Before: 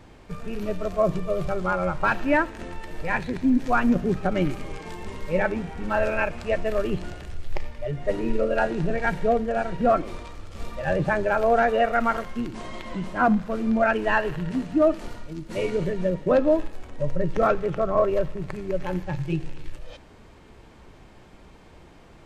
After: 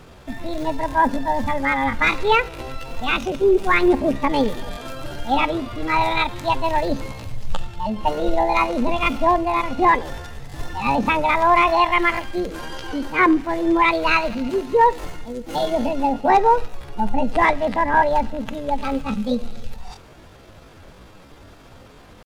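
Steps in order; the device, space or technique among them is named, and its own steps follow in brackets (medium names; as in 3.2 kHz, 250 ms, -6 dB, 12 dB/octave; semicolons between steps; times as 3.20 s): chipmunk voice (pitch shift +7 st); trim +4.5 dB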